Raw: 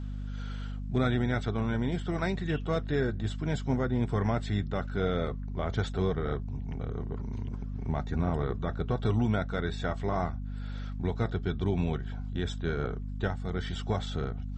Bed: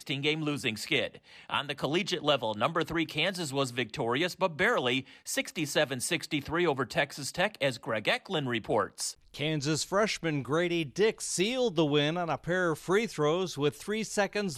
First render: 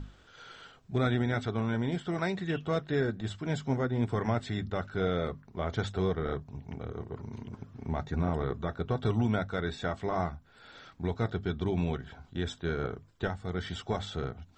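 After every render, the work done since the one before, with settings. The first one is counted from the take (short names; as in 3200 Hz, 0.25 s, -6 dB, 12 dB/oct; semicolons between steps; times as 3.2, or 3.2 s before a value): notches 50/100/150/200/250 Hz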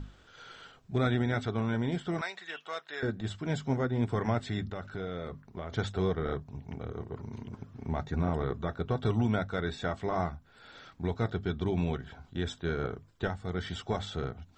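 2.21–3.03 HPF 960 Hz; 4.65–5.72 compressor 4:1, threshold -34 dBFS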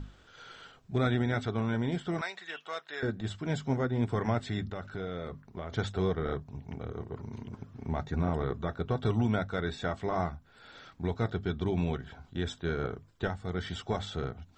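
nothing audible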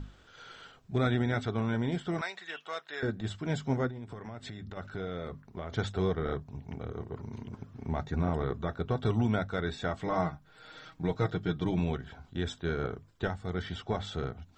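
3.89–4.77 compressor 12:1, threshold -38 dBFS; 9.98–11.79 comb 6.4 ms; 13.62–14.05 air absorption 86 m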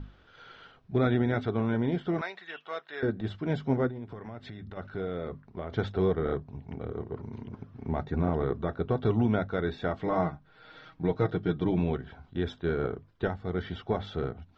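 Bessel low-pass 3400 Hz, order 8; dynamic EQ 370 Hz, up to +5 dB, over -44 dBFS, Q 0.76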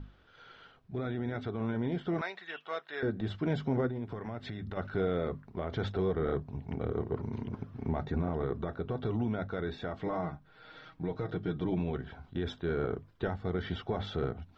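limiter -23.5 dBFS, peak gain reduction 10.5 dB; vocal rider 2 s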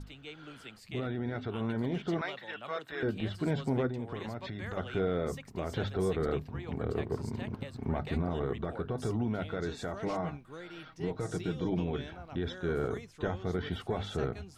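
add bed -18 dB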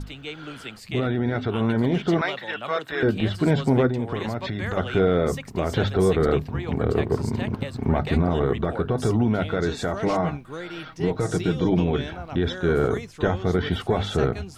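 gain +11 dB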